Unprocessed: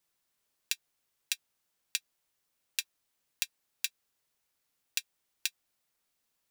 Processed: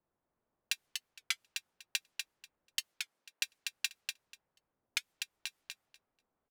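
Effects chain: 2.8–3.44 HPF 110 Hz -> 430 Hz; low-pass opened by the level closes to 920 Hz, open at -39 dBFS; high shelf 2700 Hz -7.5 dB; 4.98–5.47 compressor, threshold -45 dBFS, peak gain reduction 10.5 dB; feedback echo 0.244 s, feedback 15%, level -5 dB; record warp 33 1/3 rpm, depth 250 cents; gain +5.5 dB

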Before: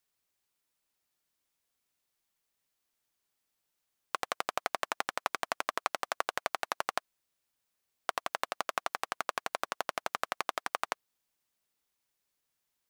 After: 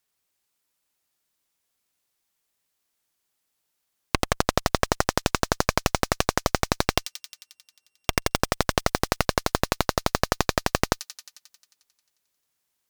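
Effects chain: 6.87–8.37 sample sorter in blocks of 16 samples; added harmonics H 8 -6 dB, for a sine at -8.5 dBFS; thin delay 89 ms, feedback 70%, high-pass 4400 Hz, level -5.5 dB; gain +4 dB

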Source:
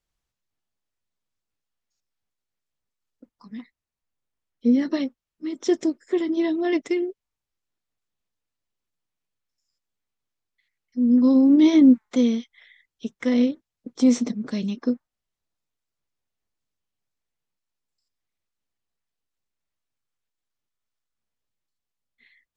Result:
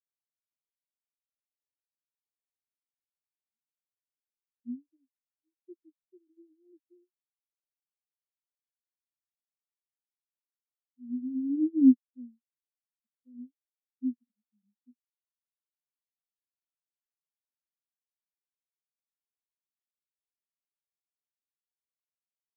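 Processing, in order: spectral expander 4:1; gain -4 dB

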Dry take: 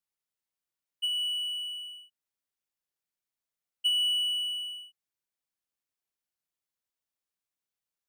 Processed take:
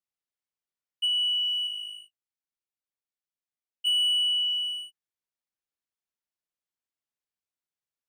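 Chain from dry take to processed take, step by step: high shelf 10000 Hz -9.5 dB; sample leveller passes 2; 1.67–3.87 flange 1 Hz, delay 2.1 ms, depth 9 ms, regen -29%

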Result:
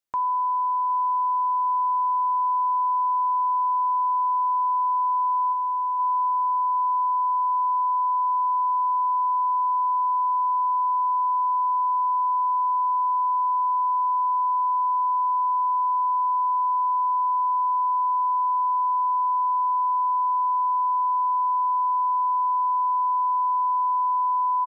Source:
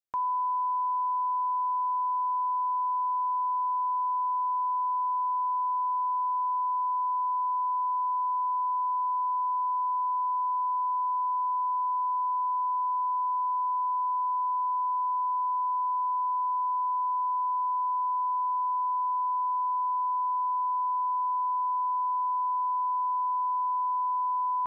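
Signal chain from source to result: 5.52–5.98 HPF 950 Hz -> 890 Hz 6 dB/oct; feedback echo 0.761 s, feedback 49%, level -22 dB; gain +4.5 dB

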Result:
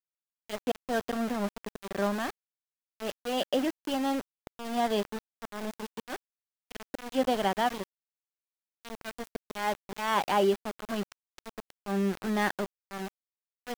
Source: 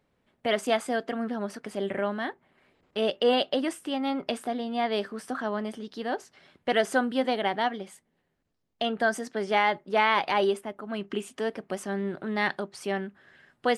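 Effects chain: auto swell 0.255 s; speaker cabinet 190–6600 Hz, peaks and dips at 190 Hz +8 dB, 2200 Hz -9 dB, 4100 Hz -9 dB; sample gate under -32.5 dBFS

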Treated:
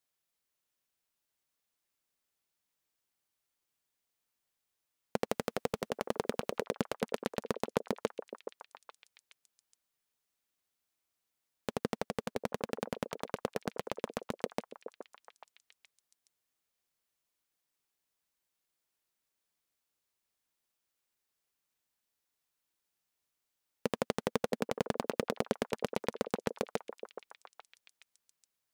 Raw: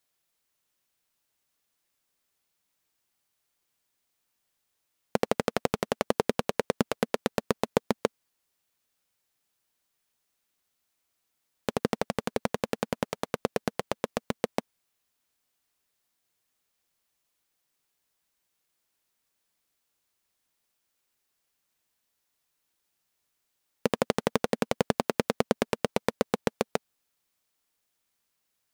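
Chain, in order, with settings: 5.29–6.64 transient shaper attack -1 dB, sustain +7 dB; on a send: delay with a stepping band-pass 0.421 s, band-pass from 430 Hz, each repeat 1.4 oct, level -7.5 dB; on the sum: gain -7 dB

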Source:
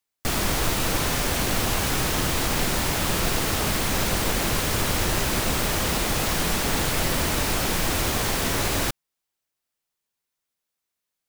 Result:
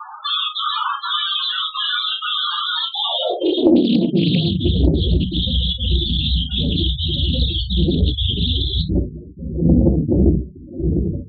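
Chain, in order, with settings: wind noise 430 Hz -26 dBFS; bell 3500 Hz +14.5 dB 0.82 oct; notch 2200 Hz, Q 12; sine folder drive 12 dB, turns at -3 dBFS; step gate "xxxxxx.xxxxx.xx" 189 bpm -60 dB; high-pass sweep 1200 Hz -> 63 Hz, 2.73–4.76; loudest bins only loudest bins 8; on a send at -1 dB: reverb, pre-delay 3 ms; on the sum: Doppler distortion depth 0.39 ms; gain -7.5 dB

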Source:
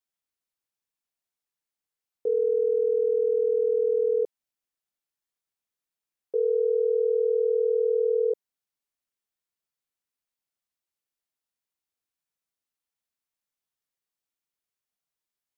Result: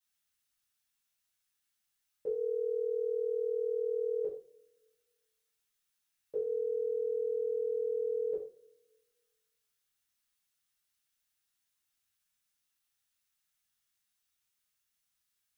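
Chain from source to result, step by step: bell 470 Hz -13 dB 2.1 oct; two-slope reverb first 0.4 s, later 1.5 s, from -25 dB, DRR -8 dB

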